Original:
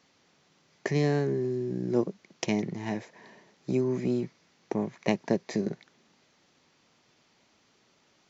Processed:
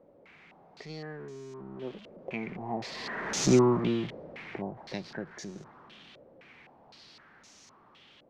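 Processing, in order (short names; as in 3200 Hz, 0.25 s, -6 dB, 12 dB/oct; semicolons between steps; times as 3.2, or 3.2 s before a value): zero-crossing step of -33 dBFS; Doppler pass-by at 3.49, 21 m/s, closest 3.9 m; stepped low-pass 3.9 Hz 550–6400 Hz; gain +5 dB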